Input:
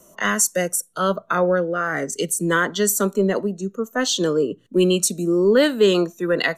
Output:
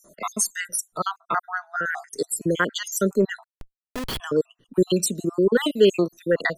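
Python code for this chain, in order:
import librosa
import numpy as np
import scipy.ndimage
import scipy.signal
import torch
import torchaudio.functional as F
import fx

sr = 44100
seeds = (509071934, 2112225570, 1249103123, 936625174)

y = fx.spec_dropout(x, sr, seeds[0], share_pct=60)
y = fx.schmitt(y, sr, flips_db=-25.5, at=(3.44, 4.2))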